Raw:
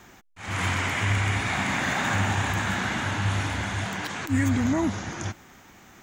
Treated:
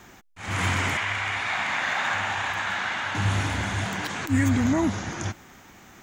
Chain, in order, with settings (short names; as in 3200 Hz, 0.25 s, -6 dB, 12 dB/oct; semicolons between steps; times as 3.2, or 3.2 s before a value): 0.97–3.15 three-band isolator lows -16 dB, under 580 Hz, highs -12 dB, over 5300 Hz; gain +1.5 dB